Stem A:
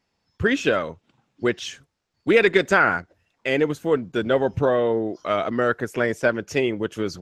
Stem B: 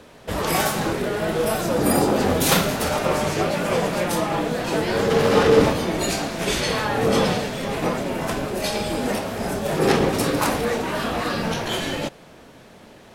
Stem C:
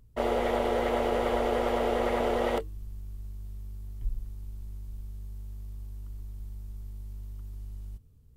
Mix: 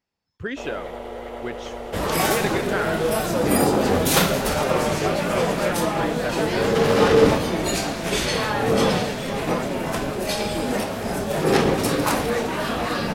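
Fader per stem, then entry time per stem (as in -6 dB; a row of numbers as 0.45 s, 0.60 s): -9.5 dB, 0.0 dB, -6.5 dB; 0.00 s, 1.65 s, 0.40 s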